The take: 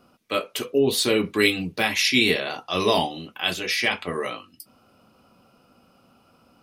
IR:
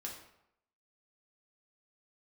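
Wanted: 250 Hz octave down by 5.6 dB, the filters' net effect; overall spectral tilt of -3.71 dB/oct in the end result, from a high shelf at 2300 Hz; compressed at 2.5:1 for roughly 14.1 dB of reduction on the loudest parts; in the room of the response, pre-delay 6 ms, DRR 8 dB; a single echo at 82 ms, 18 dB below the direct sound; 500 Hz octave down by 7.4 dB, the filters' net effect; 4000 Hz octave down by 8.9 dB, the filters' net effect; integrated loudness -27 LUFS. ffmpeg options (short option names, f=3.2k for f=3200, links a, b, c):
-filter_complex "[0:a]equalizer=f=250:t=o:g=-4.5,equalizer=f=500:t=o:g=-7.5,highshelf=f=2.3k:g=-8,equalizer=f=4k:t=o:g=-4,acompressor=threshold=-44dB:ratio=2.5,aecho=1:1:82:0.126,asplit=2[a][b];[1:a]atrim=start_sample=2205,adelay=6[c];[b][c]afir=irnorm=-1:irlink=0,volume=-6dB[d];[a][d]amix=inputs=2:normalize=0,volume=14dB"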